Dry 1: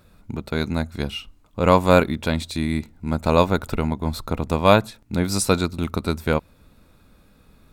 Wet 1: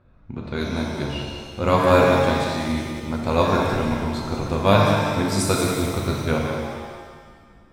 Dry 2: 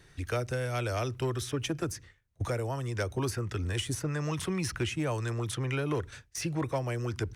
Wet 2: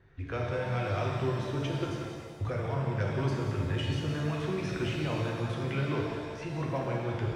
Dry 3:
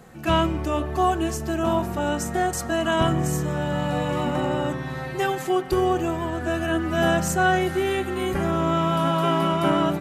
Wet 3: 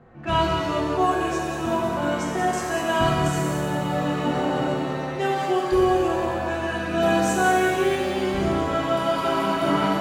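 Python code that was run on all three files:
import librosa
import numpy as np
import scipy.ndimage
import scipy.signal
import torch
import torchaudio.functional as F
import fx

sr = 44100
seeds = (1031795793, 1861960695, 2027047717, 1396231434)

y = fx.env_lowpass(x, sr, base_hz=1700.0, full_db=-17.5)
y = fx.echo_feedback(y, sr, ms=184, feedback_pct=39, wet_db=-8.0)
y = fx.rev_shimmer(y, sr, seeds[0], rt60_s=1.5, semitones=7, shimmer_db=-8, drr_db=-1.0)
y = y * 10.0 ** (-4.5 / 20.0)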